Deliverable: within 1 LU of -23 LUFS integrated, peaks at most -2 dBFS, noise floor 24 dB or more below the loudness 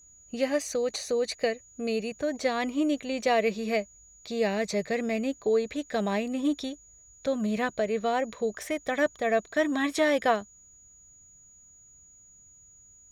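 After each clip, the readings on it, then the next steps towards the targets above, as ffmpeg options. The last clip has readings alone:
steady tone 6.8 kHz; tone level -53 dBFS; loudness -28.5 LUFS; peak level -12.0 dBFS; loudness target -23.0 LUFS
-> -af "bandreject=f=6800:w=30"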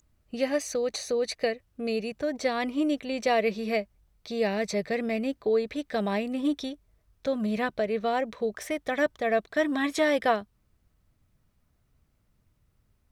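steady tone not found; loudness -28.5 LUFS; peak level -12.0 dBFS; loudness target -23.0 LUFS
-> -af "volume=1.88"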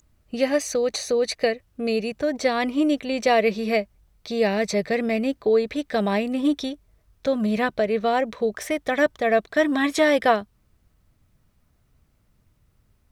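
loudness -23.0 LUFS; peak level -6.5 dBFS; noise floor -65 dBFS

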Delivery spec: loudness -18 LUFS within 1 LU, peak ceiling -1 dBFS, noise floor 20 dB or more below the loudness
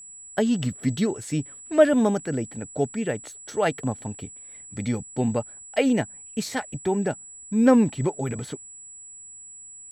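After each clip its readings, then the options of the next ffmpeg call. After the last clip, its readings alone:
steady tone 7.8 kHz; tone level -41 dBFS; loudness -25.0 LUFS; peak level -4.5 dBFS; loudness target -18.0 LUFS
-> -af "bandreject=f=7800:w=30"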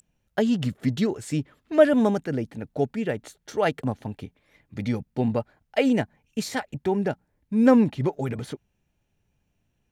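steady tone not found; loudness -25.0 LUFS; peak level -4.5 dBFS; loudness target -18.0 LUFS
-> -af "volume=2.24,alimiter=limit=0.891:level=0:latency=1"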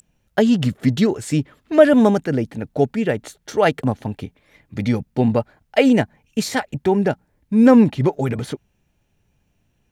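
loudness -18.5 LUFS; peak level -1.0 dBFS; noise floor -67 dBFS

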